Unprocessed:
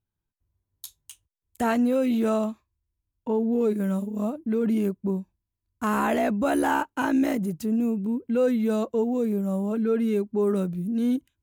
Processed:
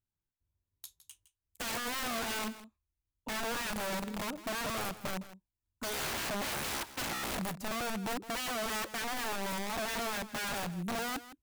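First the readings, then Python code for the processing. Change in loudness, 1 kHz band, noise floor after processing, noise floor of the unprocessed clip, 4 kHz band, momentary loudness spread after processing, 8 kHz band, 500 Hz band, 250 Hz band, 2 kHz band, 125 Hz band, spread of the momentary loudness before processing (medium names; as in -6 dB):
-10.5 dB, -6.5 dB, under -85 dBFS, -85 dBFS, +8.0 dB, 6 LU, +6.0 dB, -15.0 dB, -18.0 dB, -1.5 dB, -11.5 dB, 7 LU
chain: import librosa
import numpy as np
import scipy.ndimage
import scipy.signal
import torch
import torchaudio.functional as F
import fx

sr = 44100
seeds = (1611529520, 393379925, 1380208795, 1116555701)

p1 = (np.mod(10.0 ** (23.5 / 20.0) * x + 1.0, 2.0) - 1.0) / 10.0 ** (23.5 / 20.0)
p2 = p1 + fx.echo_single(p1, sr, ms=161, db=-15.0, dry=0)
y = p2 * librosa.db_to_amplitude(-8.0)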